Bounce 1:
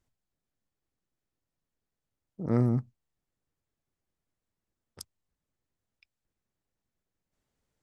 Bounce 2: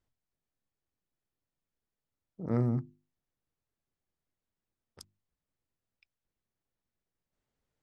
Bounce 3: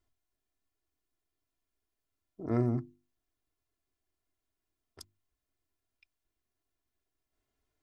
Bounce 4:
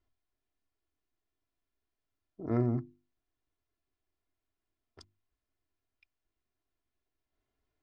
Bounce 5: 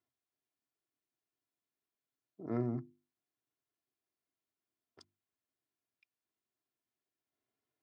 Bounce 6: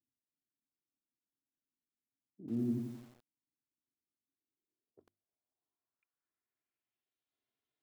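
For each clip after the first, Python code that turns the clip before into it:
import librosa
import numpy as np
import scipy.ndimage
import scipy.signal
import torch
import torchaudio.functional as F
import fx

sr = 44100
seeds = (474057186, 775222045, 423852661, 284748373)

y1 = fx.high_shelf(x, sr, hz=7700.0, db=-10.5)
y1 = fx.hum_notches(y1, sr, base_hz=50, count=7)
y1 = F.gain(torch.from_numpy(y1), -3.0).numpy()
y2 = y1 + 0.69 * np.pad(y1, (int(2.9 * sr / 1000.0), 0))[:len(y1)]
y3 = fx.air_absorb(y2, sr, metres=130.0)
y4 = scipy.signal.sosfilt(scipy.signal.butter(4, 120.0, 'highpass', fs=sr, output='sos'), y3)
y4 = F.gain(torch.from_numpy(y4), -5.0).numpy()
y5 = fx.filter_sweep_lowpass(y4, sr, from_hz=250.0, to_hz=3600.0, start_s=4.22, end_s=7.17, q=2.3)
y5 = fx.echo_crushed(y5, sr, ms=87, feedback_pct=55, bits=9, wet_db=-4.5)
y5 = F.gain(torch.from_numpy(y5), -5.0).numpy()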